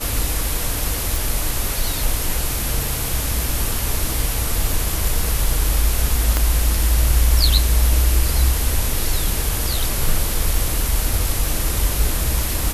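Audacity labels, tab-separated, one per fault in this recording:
1.160000	1.160000	click
6.370000	6.370000	click −4 dBFS

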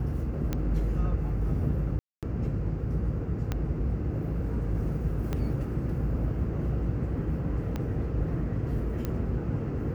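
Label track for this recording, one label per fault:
0.530000	0.530000	click −16 dBFS
1.990000	2.230000	drop-out 237 ms
3.520000	3.520000	click −16 dBFS
5.330000	5.330000	click −18 dBFS
7.760000	7.760000	click −19 dBFS
9.050000	9.050000	click −18 dBFS

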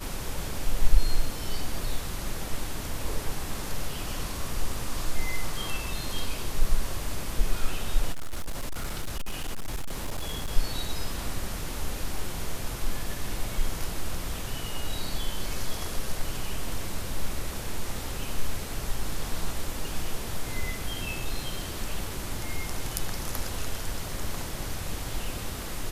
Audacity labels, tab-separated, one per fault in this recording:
8.120000	10.490000	clipping −26 dBFS

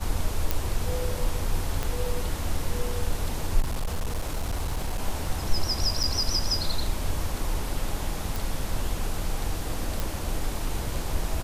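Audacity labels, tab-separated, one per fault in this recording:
0.510000	0.510000	click
1.830000	1.830000	click −14 dBFS
3.600000	5.020000	clipping −23.5 dBFS
6.030000	6.040000	drop-out 7.1 ms
8.360000	8.360000	click
10.000000	10.000000	click

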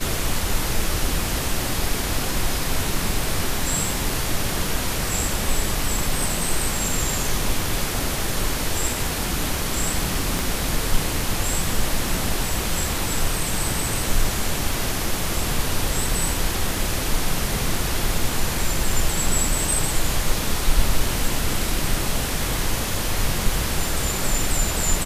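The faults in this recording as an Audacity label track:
10.390000	10.390000	click

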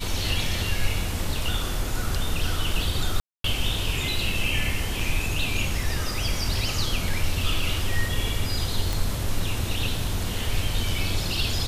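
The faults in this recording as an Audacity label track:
3.200000	3.440000	drop-out 243 ms
8.930000	8.930000	click

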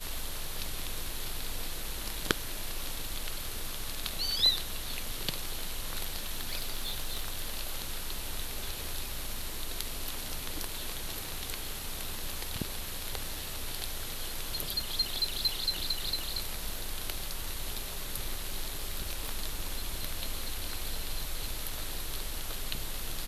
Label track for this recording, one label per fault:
6.260000	7.590000	clipping −27 dBFS
19.280000	19.280000	click

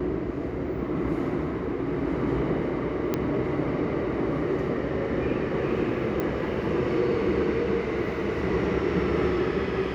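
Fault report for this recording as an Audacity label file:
3.140000	3.140000	click −12 dBFS
6.200000	6.200000	click −16 dBFS

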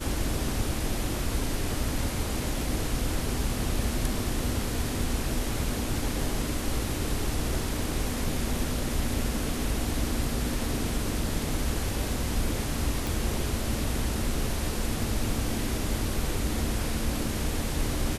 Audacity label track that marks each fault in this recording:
13.070000	13.070000	click

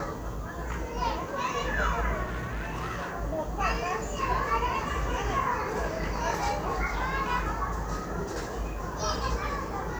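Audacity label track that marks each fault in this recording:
2.230000	3.140000	clipping −29.5 dBFS

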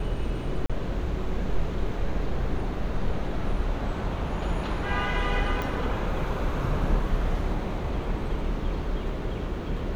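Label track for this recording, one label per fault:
0.660000	0.700000	drop-out 36 ms
5.620000	5.620000	click

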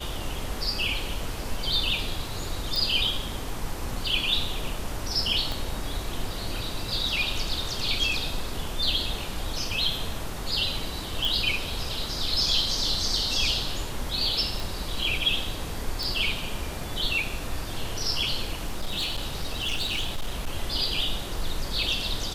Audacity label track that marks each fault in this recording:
2.760000	2.760000	click
5.520000	5.520000	click
11.250000	11.250000	click
14.600000	14.600000	click
16.030000	16.030000	click
18.610000	20.470000	clipping −23.5 dBFS

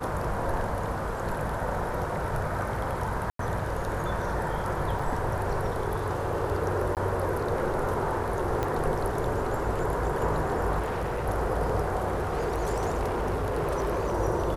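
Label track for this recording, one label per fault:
3.300000	3.390000	drop-out 93 ms
4.990000	4.990000	drop-out 4.5 ms
6.950000	6.970000	drop-out 18 ms
8.630000	8.630000	click −15 dBFS
10.790000	11.280000	clipping −26.5 dBFS
12.130000	14.150000	clipping −24 dBFS

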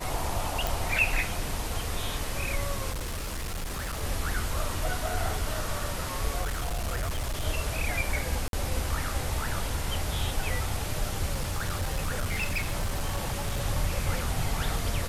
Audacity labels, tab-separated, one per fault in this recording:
0.670000	0.670000	click
2.910000	4.030000	clipping −29.5 dBFS
6.410000	7.450000	clipping −26.5 dBFS
8.480000	8.530000	drop-out 52 ms
11.320000	13.610000	clipping −24.5 dBFS

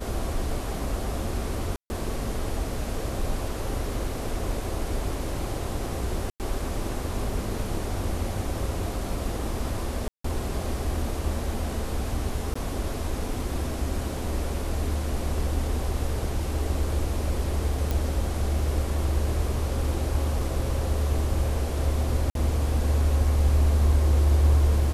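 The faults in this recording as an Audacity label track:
1.760000	1.900000	drop-out 140 ms
6.300000	6.400000	drop-out 98 ms
10.080000	10.240000	drop-out 164 ms
12.540000	12.550000	drop-out 15 ms
17.910000	17.910000	click
22.300000	22.350000	drop-out 52 ms

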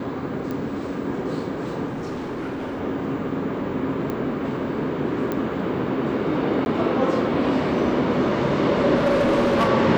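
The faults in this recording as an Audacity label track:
0.510000	0.510000	click −18 dBFS
1.860000	2.810000	clipping −26 dBFS
4.100000	4.100000	click −16 dBFS
5.320000	5.320000	click −13 dBFS
6.650000	6.660000	drop-out
8.950000	9.690000	clipping −15.5 dBFS

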